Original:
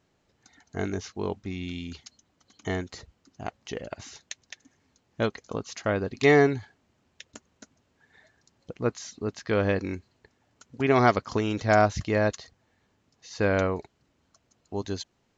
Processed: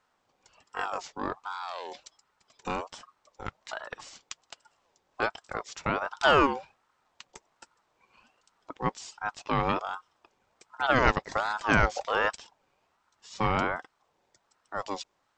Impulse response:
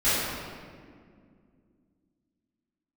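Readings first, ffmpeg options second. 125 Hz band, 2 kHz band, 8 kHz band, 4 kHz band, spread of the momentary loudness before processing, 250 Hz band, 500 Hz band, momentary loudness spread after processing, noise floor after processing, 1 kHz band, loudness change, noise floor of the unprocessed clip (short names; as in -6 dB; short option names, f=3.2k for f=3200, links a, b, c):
-6.5 dB, +1.0 dB, n/a, +2.5 dB, 20 LU, -6.5 dB, -6.5 dB, 20 LU, -74 dBFS, +2.0 dB, -2.5 dB, -71 dBFS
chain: -af "aeval=exprs='val(0)*sin(2*PI*900*n/s+900*0.3/1.3*sin(2*PI*1.3*n/s))':c=same"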